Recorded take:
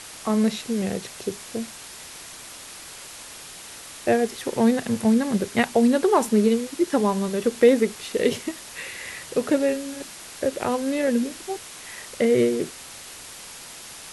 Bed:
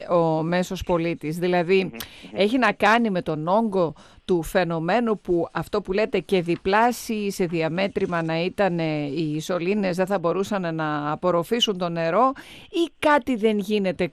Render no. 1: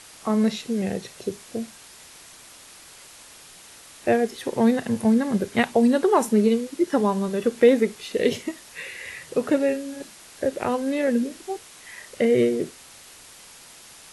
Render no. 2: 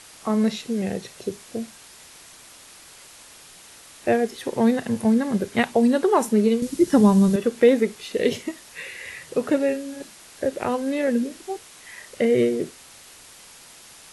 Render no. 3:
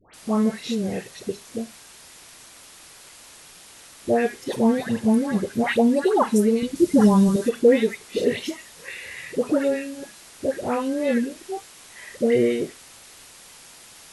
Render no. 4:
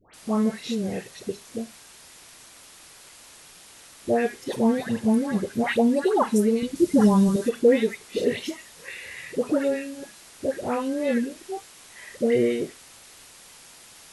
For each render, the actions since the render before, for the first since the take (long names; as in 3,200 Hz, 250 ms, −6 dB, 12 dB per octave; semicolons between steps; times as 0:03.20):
noise reduction from a noise print 6 dB
0:06.62–0:07.36: bass and treble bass +15 dB, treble +7 dB
all-pass dispersion highs, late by 139 ms, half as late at 1,300 Hz
level −2 dB